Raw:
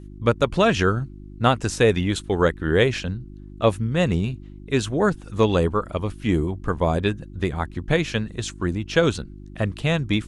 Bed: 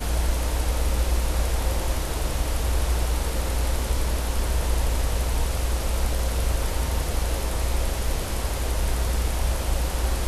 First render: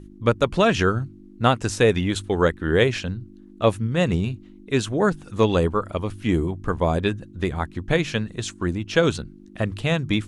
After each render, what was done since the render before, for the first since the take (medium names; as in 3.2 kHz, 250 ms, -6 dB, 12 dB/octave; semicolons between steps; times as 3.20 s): de-hum 50 Hz, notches 3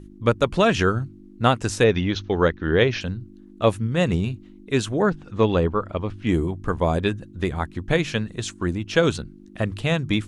1.84–3.01 s: steep low-pass 6.3 kHz 96 dB/octave; 5.02–6.27 s: distance through air 140 m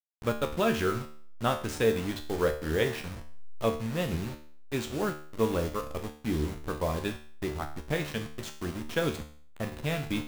send-on-delta sampling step -26 dBFS; feedback comb 75 Hz, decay 0.5 s, harmonics all, mix 80%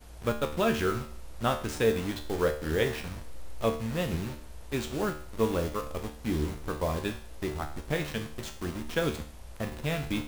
add bed -23.5 dB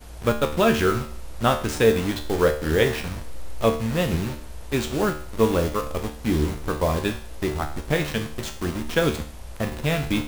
trim +7.5 dB